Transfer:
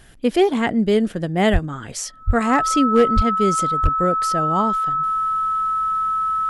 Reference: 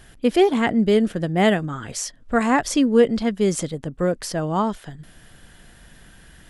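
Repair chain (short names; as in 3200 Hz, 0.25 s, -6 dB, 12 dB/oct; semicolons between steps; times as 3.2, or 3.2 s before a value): clip repair -7 dBFS; notch 1300 Hz, Q 30; de-plosive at 1.52/2.26/3.15/3.82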